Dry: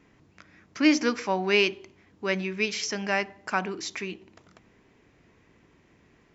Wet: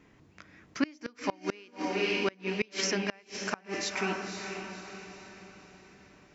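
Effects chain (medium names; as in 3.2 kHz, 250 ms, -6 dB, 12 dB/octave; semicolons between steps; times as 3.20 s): echo that smears into a reverb 527 ms, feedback 44%, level -7 dB; inverted gate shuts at -15 dBFS, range -30 dB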